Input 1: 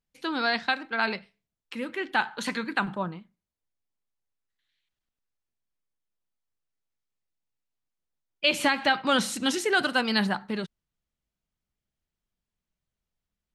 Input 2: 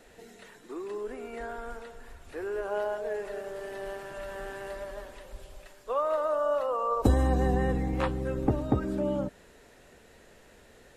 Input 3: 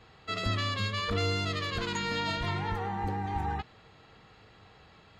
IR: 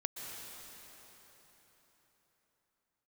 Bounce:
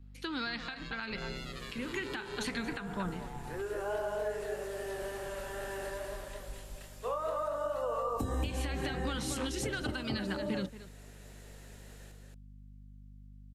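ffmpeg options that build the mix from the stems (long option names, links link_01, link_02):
-filter_complex "[0:a]aeval=exprs='val(0)+0.00282*(sin(2*PI*50*n/s)+sin(2*PI*2*50*n/s)/2+sin(2*PI*3*50*n/s)/3+sin(2*PI*4*50*n/s)/4+sin(2*PI*5*50*n/s)/5)':channel_layout=same,volume=1dB,asplit=3[link_01][link_02][link_03];[link_02]volume=-21dB[link_04];[1:a]highshelf=frequency=4200:gain=10,flanger=delay=22.5:depth=6.1:speed=2.4,adelay=1150,volume=-0.5dB,asplit=2[link_05][link_06];[link_06]volume=-4dB[link_07];[2:a]equalizer=frequency=560:width_type=o:width=1.4:gain=7,dynaudnorm=framelen=280:gausssize=3:maxgain=11dB,aeval=exprs='val(0)*sin(2*PI*64*n/s)':channel_layout=same,volume=-18.5dB[link_08];[link_03]apad=whole_len=534297[link_09];[link_05][link_09]sidechaincompress=threshold=-31dB:ratio=8:attack=37:release=1150[link_10];[link_01][link_08]amix=inputs=2:normalize=0,equalizer=frequency=690:width=1.1:gain=-10,acompressor=threshold=-31dB:ratio=6,volume=0dB[link_11];[link_04][link_07]amix=inputs=2:normalize=0,aecho=0:1:227:1[link_12];[link_10][link_11][link_12]amix=inputs=3:normalize=0,acrossover=split=240[link_13][link_14];[link_14]acompressor=threshold=-32dB:ratio=2.5[link_15];[link_13][link_15]amix=inputs=2:normalize=0,alimiter=level_in=0.5dB:limit=-24dB:level=0:latency=1:release=184,volume=-0.5dB"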